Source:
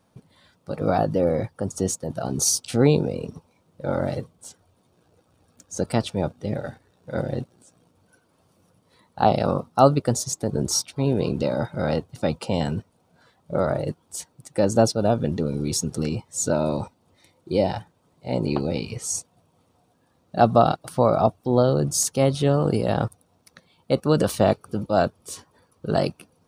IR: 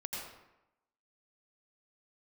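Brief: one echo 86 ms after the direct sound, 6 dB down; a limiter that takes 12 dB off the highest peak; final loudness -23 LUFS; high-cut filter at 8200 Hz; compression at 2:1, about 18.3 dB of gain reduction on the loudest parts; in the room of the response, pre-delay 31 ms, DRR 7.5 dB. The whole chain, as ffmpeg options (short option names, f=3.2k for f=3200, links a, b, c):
-filter_complex "[0:a]lowpass=8.2k,acompressor=threshold=-46dB:ratio=2,alimiter=level_in=6dB:limit=-24dB:level=0:latency=1,volume=-6dB,aecho=1:1:86:0.501,asplit=2[a][b];[1:a]atrim=start_sample=2205,adelay=31[c];[b][c]afir=irnorm=-1:irlink=0,volume=-8.5dB[d];[a][d]amix=inputs=2:normalize=0,volume=18dB"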